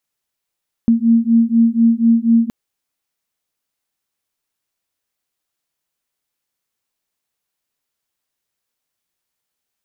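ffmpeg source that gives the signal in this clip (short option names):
-f lavfi -i "aevalsrc='0.224*(sin(2*PI*228*t)+sin(2*PI*232.1*t))':d=1.62:s=44100"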